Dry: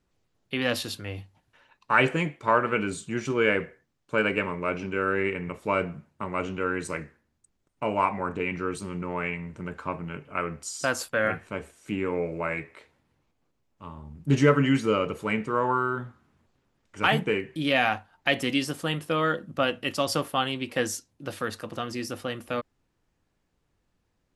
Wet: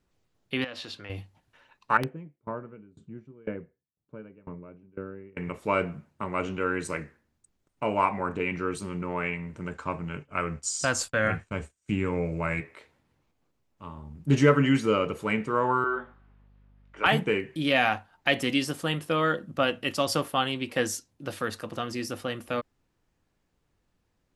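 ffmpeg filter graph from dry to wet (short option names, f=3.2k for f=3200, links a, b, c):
-filter_complex "[0:a]asettb=1/sr,asplit=3[a][b][c];[a]atrim=end=0.644[d];[b]atrim=start=0.64:end=1.1,asetpts=PTS-STARTPTS,afade=t=in:d=0.004:c=qsin,afade=t=out:st=0.456:d=0.004:c=qsin,lowpass=4.3k,acompressor=threshold=-33dB:ratio=6:attack=3.2:release=140:knee=1:detection=peak,lowshelf=f=260:g=-11[e];[c]atrim=start=1.096[f];[d][e]acrossfade=d=0.004:c1=hsin:c2=qsin[g];[g][f]acrossfade=d=0.004:c1=qsin:c2=hsin,asettb=1/sr,asplit=3[h][i][j];[h]atrim=end=1.974[k];[i]atrim=start=1.97:end=5.37,asetpts=PTS-STARTPTS,afade=t=in:d=0.004:c=qsin,afade=t=out:st=3.396:d=0.004:c=qsin,bandpass=f=130:t=q:w=0.61,aeval=exprs='(mod(7.5*val(0)+1,2)-1)/7.5':c=same,aeval=exprs='val(0)*pow(10,-26*if(lt(mod(2*n/s,1),2*abs(2)/1000),1-mod(2*n/s,1)/(2*abs(2)/1000),(mod(2*n/s,1)-2*abs(2)/1000)/(1-2*abs(2)/1000))/20)':c=same[l];[j]atrim=start=5.366[m];[k][l]acrossfade=d=0.004:c1=hsin:c2=qsin[n];[n][m]acrossfade=d=0.004:c1=qsin:c2=hsin,asettb=1/sr,asplit=3[o][p][q];[o]atrim=end=9.604[r];[p]atrim=start=9.6:end=12.61,asetpts=PTS-STARTPTS,afade=t=in:d=0.004:c=qsin,afade=t=out:st=3.006:d=0.004:c=qsin,agate=range=-33dB:threshold=-43dB:ratio=3:release=100:detection=peak,lowpass=f=7.7k:t=q:w=2,asubboost=boost=4.5:cutoff=190[s];[q]atrim=start=12.606[t];[r][s]acrossfade=d=0.004:c1=hsin:c2=qsin[u];[u][t]acrossfade=d=0.004:c1=qsin:c2=hsin,asettb=1/sr,asplit=3[v][w][x];[v]atrim=end=15.844[y];[w]atrim=start=15.84:end=17.06,asetpts=PTS-STARTPTS,afade=t=in:d=0.004:c=qsin,afade=t=out:st=1.216:d=0.004:c=qsin,acrossover=split=320 3600:gain=0.0794 1 0.0708[z][aa][ab];[z][aa][ab]amix=inputs=3:normalize=0,aeval=exprs='val(0)+0.001*(sin(2*PI*50*n/s)+sin(2*PI*2*50*n/s)/2+sin(2*PI*3*50*n/s)/3+sin(2*PI*4*50*n/s)/4+sin(2*PI*5*50*n/s)/5)':c=same,asplit=2[ac][ad];[ad]adelay=21,volume=-5dB[ae];[ac][ae]amix=inputs=2:normalize=0,atrim=end_sample=53802[af];[x]atrim=start=17.056[ag];[y][af]acrossfade=d=0.004:c1=hsin:c2=qsin[ah];[ah][ag]acrossfade=d=0.004:c1=qsin:c2=hsin"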